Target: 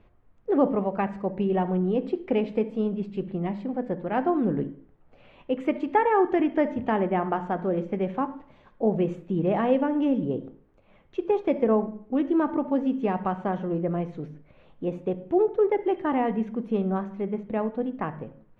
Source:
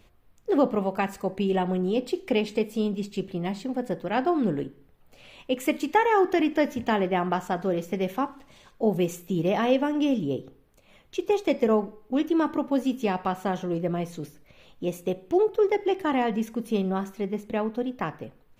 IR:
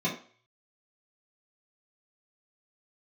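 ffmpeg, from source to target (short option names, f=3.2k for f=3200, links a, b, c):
-filter_complex "[0:a]lowpass=1.7k,asplit=2[a][b];[1:a]atrim=start_sample=2205,asetrate=38367,aresample=44100,adelay=62[c];[b][c]afir=irnorm=-1:irlink=0,volume=-26dB[d];[a][d]amix=inputs=2:normalize=0"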